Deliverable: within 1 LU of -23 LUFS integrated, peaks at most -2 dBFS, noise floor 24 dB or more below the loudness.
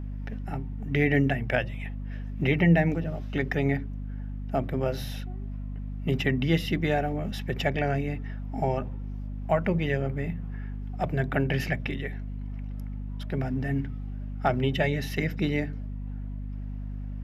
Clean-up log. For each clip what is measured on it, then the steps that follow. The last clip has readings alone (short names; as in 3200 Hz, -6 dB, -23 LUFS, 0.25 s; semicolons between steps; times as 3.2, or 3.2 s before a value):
hum 50 Hz; harmonics up to 250 Hz; hum level -32 dBFS; loudness -29.0 LUFS; peak -9.5 dBFS; loudness target -23.0 LUFS
-> de-hum 50 Hz, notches 5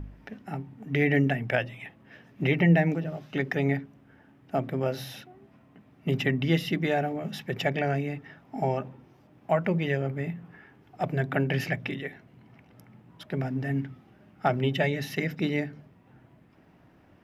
hum none; loudness -28.5 LUFS; peak -10.5 dBFS; loudness target -23.0 LUFS
-> gain +5.5 dB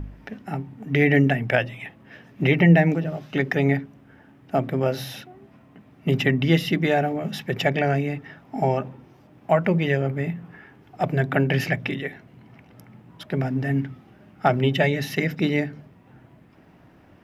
loudness -23.0 LUFS; peak -5.0 dBFS; noise floor -53 dBFS